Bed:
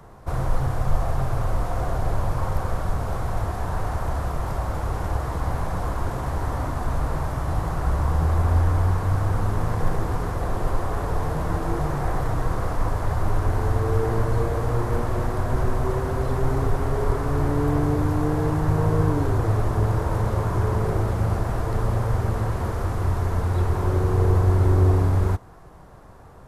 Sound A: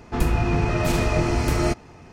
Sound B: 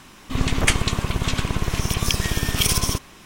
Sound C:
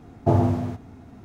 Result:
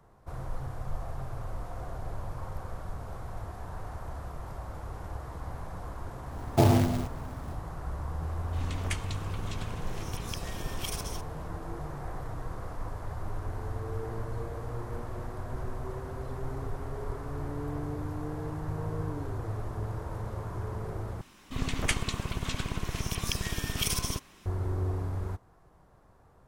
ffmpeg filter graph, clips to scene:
-filter_complex "[2:a]asplit=2[a][b];[0:a]volume=-13.5dB[c];[3:a]acrusher=bits=3:mode=log:mix=0:aa=0.000001[d];[c]asplit=2[e][f];[e]atrim=end=21.214[g];[b]atrim=end=3.25,asetpts=PTS-STARTPTS,volume=-10dB[h];[f]atrim=start=24.456[i];[d]atrim=end=1.24,asetpts=PTS-STARTPTS,volume=-2.5dB,afade=t=in:d=0.004:c=hsin,afade=t=out:st=1.236:d=0.004:c=hsin,adelay=6310[j];[a]atrim=end=3.25,asetpts=PTS-STARTPTS,volume=-17dB,afade=t=in:d=0.004:c=hsin,afade=t=out:st=3.246:d=0.004:c=hsin,adelay=8230[k];[g][h]acrossfade=d=0.004:c1=hsin:c2=hsin[l];[l][i]acrossfade=d=0.004:c1=hsin:c2=hsin[m];[m][j][k]amix=inputs=3:normalize=0"

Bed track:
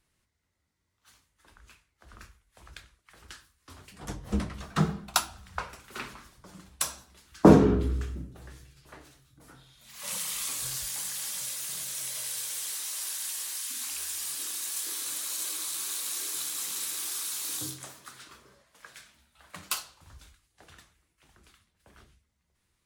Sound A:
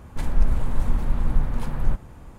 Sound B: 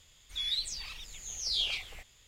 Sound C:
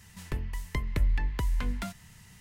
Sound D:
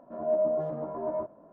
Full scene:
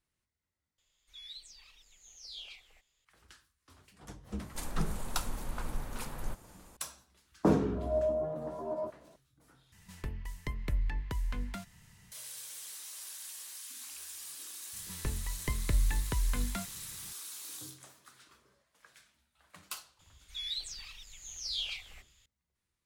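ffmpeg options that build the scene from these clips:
-filter_complex "[2:a]asplit=2[a][b];[3:a]asplit=2[c][d];[0:a]volume=-10.5dB[e];[a]equalizer=f=100:t=o:w=2:g=-8[f];[1:a]bass=f=250:g=-9,treble=f=4k:g=14[g];[b]equalizer=f=330:w=0.48:g=-8[h];[e]asplit=3[i][j][k];[i]atrim=end=0.784[l];[f]atrim=end=2.27,asetpts=PTS-STARTPTS,volume=-15dB[m];[j]atrim=start=3.046:end=9.724[n];[c]atrim=end=2.4,asetpts=PTS-STARTPTS,volume=-6dB[o];[k]atrim=start=12.116[p];[g]atrim=end=2.38,asetpts=PTS-STARTPTS,volume=-8dB,afade=t=in:d=0.004:c=hsin,afade=t=out:st=2.376:d=0.004:c=hsin,adelay=4390[q];[4:a]atrim=end=1.52,asetpts=PTS-STARTPTS,volume=-4.5dB,afade=t=in:d=0.004:c=hsin,afade=t=out:st=1.516:d=0.004:c=hsin,adelay=7640[r];[d]atrim=end=2.4,asetpts=PTS-STARTPTS,volume=-2.5dB,afade=t=in:d=0.004:c=hsin,afade=t=out:st=2.396:d=0.004:c=hsin,adelay=14730[s];[h]atrim=end=2.27,asetpts=PTS-STARTPTS,volume=-4.5dB,afade=t=in:d=0.004:c=hsin,afade=t=out:st=2.266:d=0.004:c=hsin,adelay=19990[t];[l][m]acrossfade=d=0.004:c1=hsin:c2=hsin[u];[u][n]acrossfade=d=0.004:c1=hsin:c2=hsin[v];[v][o]acrossfade=d=0.004:c1=hsin:c2=hsin[w];[w][p]acrossfade=d=0.004:c1=hsin:c2=hsin[x];[x][q][r][s][t]amix=inputs=5:normalize=0"

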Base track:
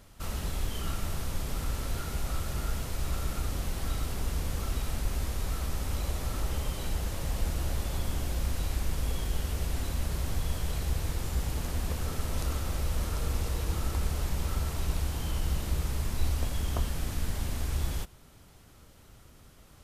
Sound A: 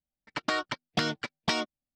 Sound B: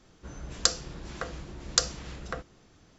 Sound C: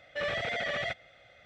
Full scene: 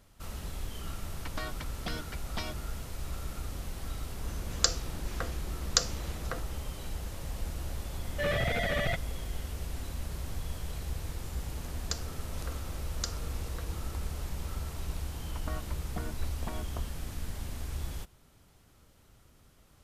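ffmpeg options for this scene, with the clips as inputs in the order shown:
-filter_complex "[1:a]asplit=2[a][b];[2:a]asplit=2[c][d];[0:a]volume=-6dB[e];[3:a]equalizer=f=130:w=0.45:g=12[f];[b]lowpass=1.2k[g];[a]atrim=end=1.95,asetpts=PTS-STARTPTS,volume=-10.5dB,afade=t=in:d=0.004:c=hsin,afade=t=out:st=1.946:d=0.004:c=hsin,adelay=890[h];[c]atrim=end=2.98,asetpts=PTS-STARTPTS,volume=-2dB,afade=t=in:d=0.004:c=hsin,afade=t=out:st=2.976:d=0.004:c=hsin,adelay=3990[i];[f]atrim=end=1.45,asetpts=PTS-STARTPTS,volume=-0.5dB,afade=t=in:d=0.004:c=hsin,afade=t=out:st=1.446:d=0.004:c=hsin,adelay=8030[j];[d]atrim=end=2.98,asetpts=PTS-STARTPTS,volume=-12.5dB,afade=t=in:d=0.004:c=hsin,afade=t=out:st=2.976:d=0.004:c=hsin,adelay=11260[k];[g]atrim=end=1.95,asetpts=PTS-STARTPTS,volume=-10.5dB,afade=t=in:d=0.004:c=hsin,afade=t=out:st=1.946:d=0.004:c=hsin,adelay=14990[l];[e][h][i][j][k][l]amix=inputs=6:normalize=0"

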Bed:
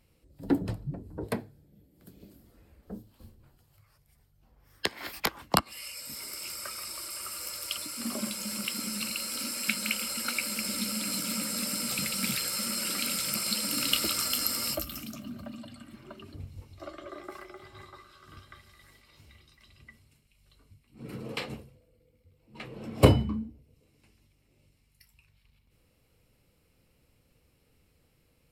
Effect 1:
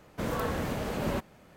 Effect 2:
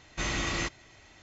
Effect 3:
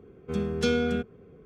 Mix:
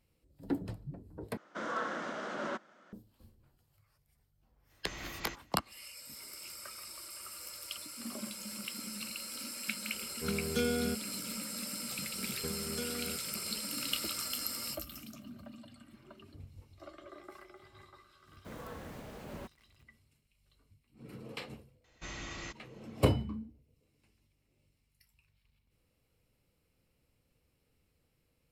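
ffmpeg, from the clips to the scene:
-filter_complex "[1:a]asplit=2[a][b];[2:a]asplit=2[c][d];[3:a]asplit=2[e][f];[0:a]volume=-8dB[g];[a]highpass=f=250:w=0.5412,highpass=f=250:w=1.3066,equalizer=f=270:t=q:w=4:g=-5,equalizer=f=440:t=q:w=4:g=-9,equalizer=f=820:t=q:w=4:g=-5,equalizer=f=1.4k:t=q:w=4:g=8,equalizer=f=2.5k:t=q:w=4:g=-8,equalizer=f=4.4k:t=q:w=4:g=-6,lowpass=f=6.2k:w=0.5412,lowpass=f=6.2k:w=1.3066[h];[f]acompressor=threshold=-38dB:ratio=6:attack=37:release=466:knee=1:detection=peak[i];[b]acrusher=bits=7:mix=0:aa=0.000001[j];[g]asplit=2[k][l];[k]atrim=end=1.374[m];[h]atrim=end=1.56,asetpts=PTS-STARTPTS,volume=-2.5dB[n];[l]atrim=start=2.926[o];[c]atrim=end=1.22,asetpts=PTS-STARTPTS,volume=-14.5dB,afade=t=in:d=0.05,afade=t=out:st=1.17:d=0.05,adelay=4670[p];[e]atrim=end=1.45,asetpts=PTS-STARTPTS,volume=-7dB,afade=t=in:d=0.004:c=hsin,afade=t=out:st=1.446:d=0.004:c=hsin,adelay=9930[q];[i]atrim=end=1.45,asetpts=PTS-STARTPTS,volume=-2.5dB,afade=t=in:d=0.004:c=hsin,afade=t=out:st=1.446:d=0.004:c=hsin,adelay=12150[r];[j]atrim=end=1.56,asetpts=PTS-STARTPTS,volume=-14.5dB,afade=t=in:d=0.004:c=hsin,afade=t=out:st=1.556:d=0.004:c=hsin,adelay=18270[s];[d]atrim=end=1.22,asetpts=PTS-STARTPTS,volume=-12.5dB,afade=t=in:d=0.004:c=hsin,afade=t=out:st=1.216:d=0.004:c=hsin,adelay=21840[t];[m][n]acrossfade=d=0.004:c1=hsin:c2=hsin[u];[u][o]acrossfade=d=0.004:c1=hsin:c2=hsin[v];[v][p][q][r][s][t]amix=inputs=6:normalize=0"

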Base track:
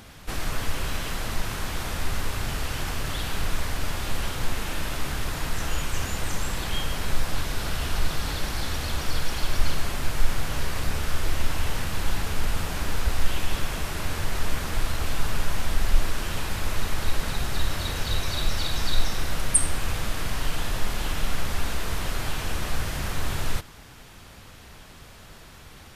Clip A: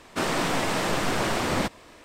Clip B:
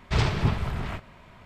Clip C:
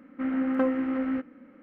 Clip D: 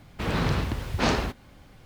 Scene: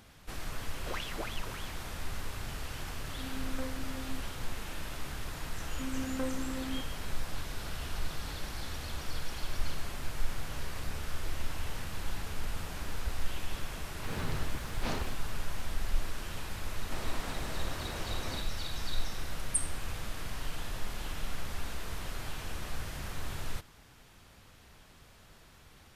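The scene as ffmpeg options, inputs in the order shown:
-filter_complex "[3:a]asplit=2[a][b];[0:a]volume=-10.5dB[c];[2:a]aeval=exprs='val(0)*sin(2*PI*1900*n/s+1900*0.8/3.4*sin(2*PI*3.4*n/s))':c=same,atrim=end=1.45,asetpts=PTS-STARTPTS,volume=-15dB,afade=t=in:d=0.004:c=hsin,afade=t=out:st=1.446:d=0.004:c=hsin,adelay=750[d];[a]atrim=end=1.62,asetpts=PTS-STARTPTS,volume=-16dB,afade=t=in:d=0.004:c=hsin,afade=t=out:st=1.616:d=0.004:c=hsin,adelay=2990[e];[b]atrim=end=1.62,asetpts=PTS-STARTPTS,volume=-11dB,afade=t=in:d=0.004:c=hsin,afade=t=out:st=1.616:d=0.004:c=hsin,adelay=5600[f];[4:a]atrim=end=1.85,asetpts=PTS-STARTPTS,volume=-13dB,afade=t=in:d=0.004:c=hsin,afade=t=out:st=1.846:d=0.004:c=hsin,adelay=13830[g];[1:a]atrim=end=2.04,asetpts=PTS-STARTPTS,volume=-17dB,afade=t=in:d=0.004:c=hsin,afade=t=out:st=2.036:d=0.004:c=hsin,adelay=16740[h];[c][d][e][f][g][h]amix=inputs=6:normalize=0"

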